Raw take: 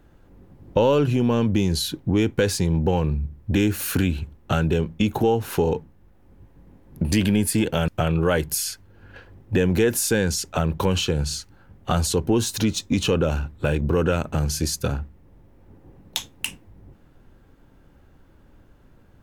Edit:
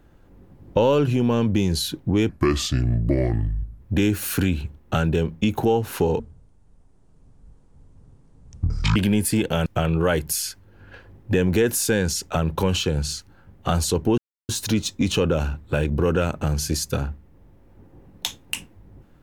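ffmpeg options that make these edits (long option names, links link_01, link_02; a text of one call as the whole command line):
ffmpeg -i in.wav -filter_complex "[0:a]asplit=6[link_01][link_02][link_03][link_04][link_05][link_06];[link_01]atrim=end=2.294[link_07];[link_02]atrim=start=2.29:end=3.38,asetpts=PTS-STARTPTS,asetrate=31752,aresample=44100,atrim=end_sample=66762,asetpts=PTS-STARTPTS[link_08];[link_03]atrim=start=3.376:end=5.774[link_09];[link_04]atrim=start=5.77:end=7.18,asetpts=PTS-STARTPTS,asetrate=22491,aresample=44100[link_10];[link_05]atrim=start=7.176:end=12.4,asetpts=PTS-STARTPTS,afade=type=out:start_time=5.22:duration=0.004:curve=hsin,apad=pad_dur=0.31[link_11];[link_06]atrim=start=12.4,asetpts=PTS-STARTPTS,afade=type=in:duration=0.004:curve=hsin[link_12];[link_07][link_08]acrossfade=duration=0.004:curve1=hsin:curve2=hsin[link_13];[link_13][link_09]acrossfade=duration=0.004:curve1=hsin:curve2=hsin[link_14];[link_14][link_10]acrossfade=duration=0.004:curve1=hsin:curve2=hsin[link_15];[link_11][link_12]concat=n=2:v=0:a=1[link_16];[link_15][link_16]acrossfade=duration=0.004:curve1=hsin:curve2=hsin" out.wav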